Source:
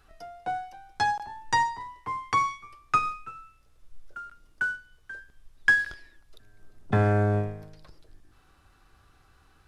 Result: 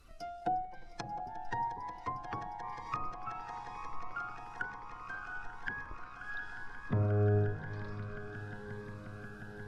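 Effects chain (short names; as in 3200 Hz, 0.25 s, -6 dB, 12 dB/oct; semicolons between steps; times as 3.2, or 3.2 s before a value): bin magnitudes rounded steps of 15 dB; 0.41–1.2 comb 5.8 ms, depth 98%; limiter -21.5 dBFS, peak gain reduction 10.5 dB; diffused feedback echo 0.663 s, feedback 55%, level -14 dB; treble ducked by the level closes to 710 Hz, closed at -30 dBFS; swelling echo 0.178 s, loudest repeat 8, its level -16.5 dB; cascading phaser rising 1 Hz; gain +1 dB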